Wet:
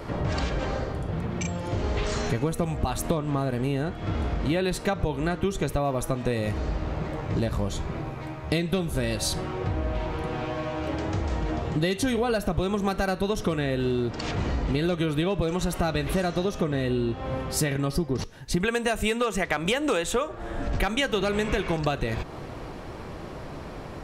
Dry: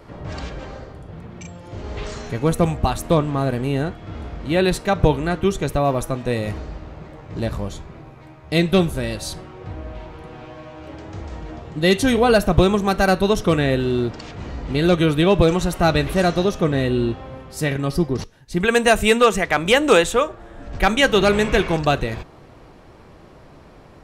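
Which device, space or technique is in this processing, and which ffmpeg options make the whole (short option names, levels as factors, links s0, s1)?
serial compression, leveller first: -af "acompressor=threshold=0.141:ratio=2.5,acompressor=threshold=0.0282:ratio=5,volume=2.37"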